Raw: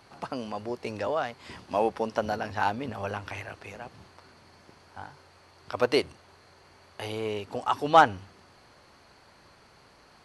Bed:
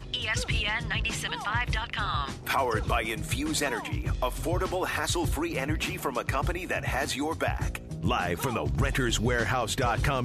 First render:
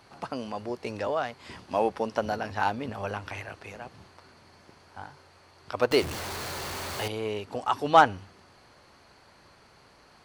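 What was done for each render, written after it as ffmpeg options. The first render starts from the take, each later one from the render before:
-filter_complex "[0:a]asettb=1/sr,asplit=3[s0][s1][s2];[s0]atrim=end=5.914[s3];[s1]atrim=start=5.91:end=7.08,asetpts=PTS-STARTPTS,afade=t=in:d=0.004:c=qsin,afade=t=out:st=1.166:d=0.004:c=qsin,aeval=exprs='val(0)+0.5*0.0316*sgn(val(0))':c=same[s4];[s2]atrim=start=7.076[s5];[s3][s4]acrossfade=d=0.004:c1=hsin:c2=qsin[s6];[s6][s5]acrossfade=d=0.004:c1=qsin:c2=hsin"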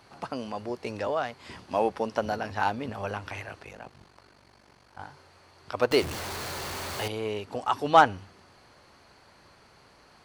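-filter_complex "[0:a]asettb=1/sr,asplit=3[s0][s1][s2];[s0]atrim=end=3.634[s3];[s1]atrim=start=3.63:end=4.99,asetpts=PTS-STARTPTS,afade=t=in:d=0.004:c=qsin,afade=t=out:st=1.356:d=0.004:c=qsin,aeval=exprs='val(0)*sin(2*PI*24*n/s)':c=same[s4];[s2]atrim=start=4.986[s5];[s3][s4]acrossfade=d=0.004:c1=hsin:c2=qsin[s6];[s6][s5]acrossfade=d=0.004:c1=qsin:c2=hsin"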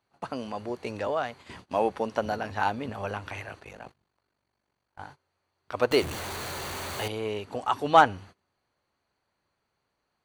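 -af "bandreject=f=5200:w=6.3,agate=range=0.0794:threshold=0.00501:ratio=16:detection=peak"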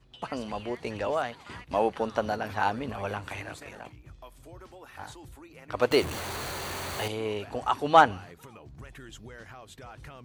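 -filter_complex "[1:a]volume=0.106[s0];[0:a][s0]amix=inputs=2:normalize=0"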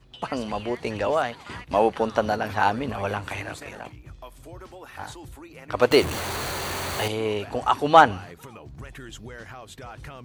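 -af "volume=1.88,alimiter=limit=0.708:level=0:latency=1"

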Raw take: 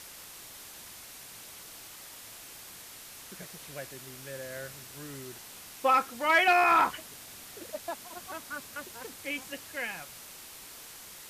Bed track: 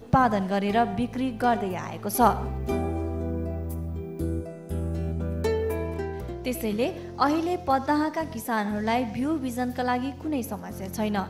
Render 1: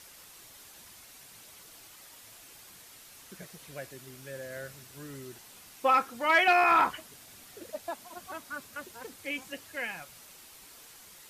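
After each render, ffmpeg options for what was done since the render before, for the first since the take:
-af "afftdn=nr=6:nf=-48"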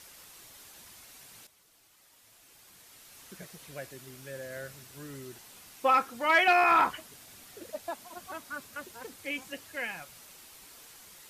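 -filter_complex "[0:a]asplit=2[s0][s1];[s0]atrim=end=1.47,asetpts=PTS-STARTPTS,afade=t=out:st=1.466:d=0.004:c=hsin:silence=0.237137[s2];[s1]atrim=start=1.47,asetpts=PTS-STARTPTS,afade=t=in:d=1.78:c=qua:silence=0.237137[s3];[s2][s3]concat=n=2:v=0:a=1"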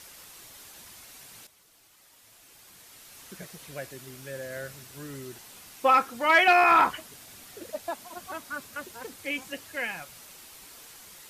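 -af "volume=1.5"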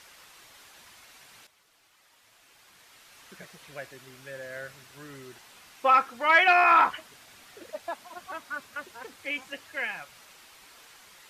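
-af "lowpass=f=1400:p=1,tiltshelf=f=770:g=-7.5"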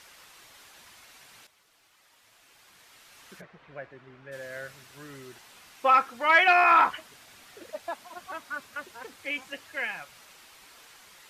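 -filter_complex "[0:a]asplit=3[s0][s1][s2];[s0]afade=t=out:st=3.4:d=0.02[s3];[s1]lowpass=1800,afade=t=in:st=3.4:d=0.02,afade=t=out:st=4.31:d=0.02[s4];[s2]afade=t=in:st=4.31:d=0.02[s5];[s3][s4][s5]amix=inputs=3:normalize=0"

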